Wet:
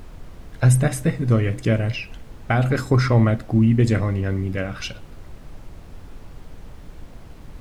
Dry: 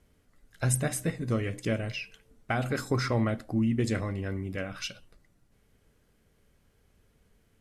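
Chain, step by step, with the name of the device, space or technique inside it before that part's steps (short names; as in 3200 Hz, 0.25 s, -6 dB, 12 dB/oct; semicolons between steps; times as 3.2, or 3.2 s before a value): car interior (bell 120 Hz +5.5 dB; high shelf 4200 Hz -7 dB; brown noise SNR 15 dB); gain +8 dB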